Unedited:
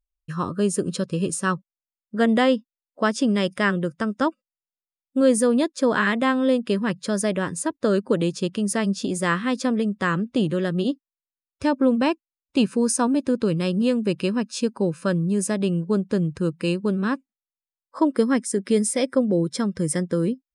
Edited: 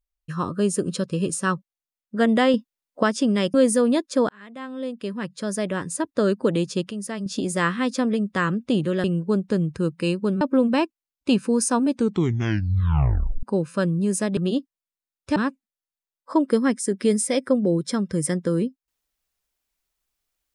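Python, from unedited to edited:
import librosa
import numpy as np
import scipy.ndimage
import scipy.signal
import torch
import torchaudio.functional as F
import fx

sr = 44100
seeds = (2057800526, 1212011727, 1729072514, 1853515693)

y = fx.edit(x, sr, fx.clip_gain(start_s=2.54, length_s=0.49, db=5.0),
    fx.cut(start_s=3.54, length_s=1.66),
    fx.fade_in_span(start_s=5.95, length_s=1.81),
    fx.clip_gain(start_s=8.57, length_s=0.35, db=-7.5),
    fx.swap(start_s=10.7, length_s=0.99, other_s=15.65, other_length_s=1.37),
    fx.tape_stop(start_s=13.18, length_s=1.53), tone=tone)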